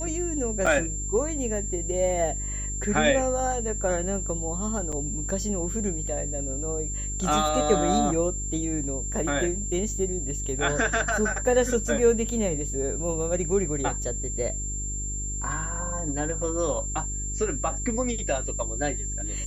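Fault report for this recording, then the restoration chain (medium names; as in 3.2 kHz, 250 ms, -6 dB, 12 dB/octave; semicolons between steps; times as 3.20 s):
hum 50 Hz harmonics 8 -33 dBFS
whine 7.3 kHz -32 dBFS
0.66–0.67 s: dropout 5.5 ms
4.92–4.93 s: dropout 6 ms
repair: de-hum 50 Hz, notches 8; band-stop 7.3 kHz, Q 30; interpolate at 0.66 s, 5.5 ms; interpolate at 4.92 s, 6 ms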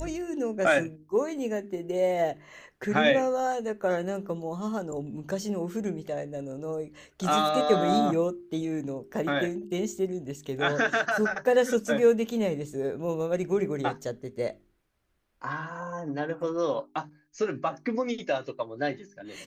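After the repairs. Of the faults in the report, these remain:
nothing left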